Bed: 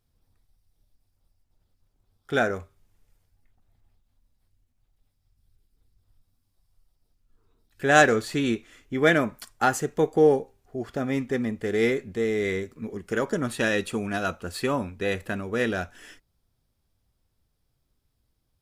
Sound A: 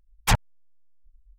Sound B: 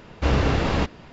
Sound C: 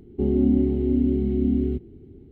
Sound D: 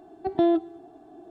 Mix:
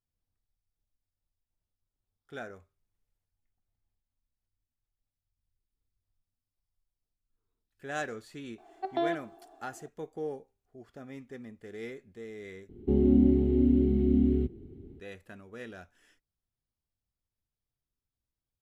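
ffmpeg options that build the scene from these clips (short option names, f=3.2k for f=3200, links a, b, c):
-filter_complex "[0:a]volume=-18dB[a];[4:a]highpass=650[b];[a]asplit=2[c][d];[c]atrim=end=12.694[e];[3:a]atrim=end=2.31,asetpts=PTS-STARTPTS,volume=-2.5dB[f];[d]atrim=start=14.996[g];[b]atrim=end=1.3,asetpts=PTS-STARTPTS,volume=-1dB,afade=t=in:d=0.004:c=hsin,afade=t=out:st=1.296:d=0.004:c=hsin,adelay=378378S[h];[e][f]acrossfade=d=0.004:c1=hsin:c2=hsin[i];[i][g]acrossfade=d=0.004:c1=hsin:c2=hsin[j];[j][h]amix=inputs=2:normalize=0"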